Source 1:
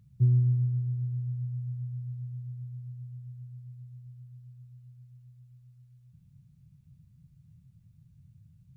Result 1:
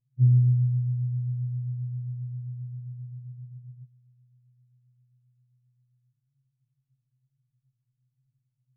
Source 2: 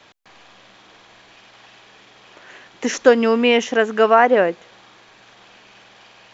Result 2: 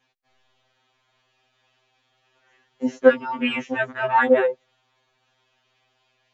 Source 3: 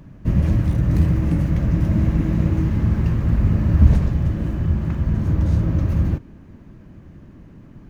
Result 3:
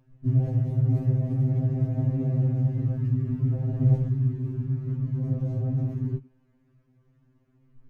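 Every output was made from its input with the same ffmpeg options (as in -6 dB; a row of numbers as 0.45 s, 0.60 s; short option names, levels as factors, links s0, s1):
-af "afwtdn=0.0631,afftfilt=real='re*2.45*eq(mod(b,6),0)':imag='im*2.45*eq(mod(b,6),0)':win_size=2048:overlap=0.75,volume=0.891"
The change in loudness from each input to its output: +4.5 LU, -5.0 LU, -6.5 LU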